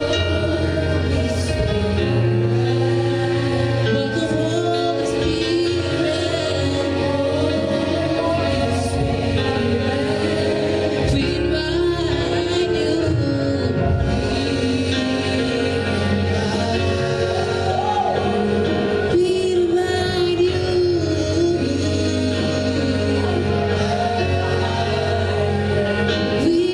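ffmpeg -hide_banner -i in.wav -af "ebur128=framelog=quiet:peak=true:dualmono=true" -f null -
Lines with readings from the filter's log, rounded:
Integrated loudness:
  I:         -16.5 LUFS
  Threshold: -26.5 LUFS
Loudness range:
  LRA:         1.2 LU
  Threshold: -36.5 LUFS
  LRA low:   -16.9 LUFS
  LRA high:  -15.6 LUFS
True peak:
  Peak:       -6.9 dBFS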